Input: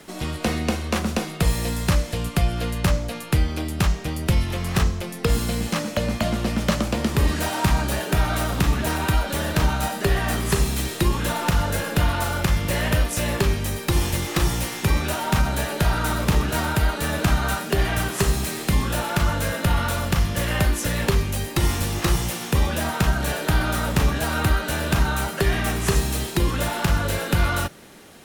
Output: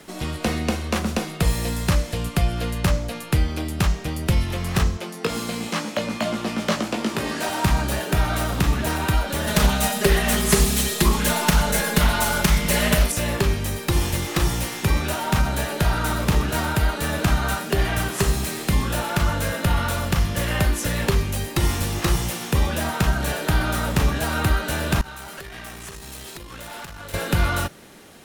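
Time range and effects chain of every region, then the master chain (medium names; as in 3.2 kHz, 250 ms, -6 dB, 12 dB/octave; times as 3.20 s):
4.97–7.49 s: high-pass 240 Hz + treble shelf 11 kHz -9 dB + doubling 18 ms -5 dB
9.47–13.12 s: treble shelf 5.1 kHz +8.5 dB + comb 4.8 ms, depth 91% + loudspeaker Doppler distortion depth 0.35 ms
25.01–27.14 s: compression 10:1, threshold -25 dBFS + bass shelf 480 Hz -7.5 dB + valve stage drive 29 dB, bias 0.65
whole clip: none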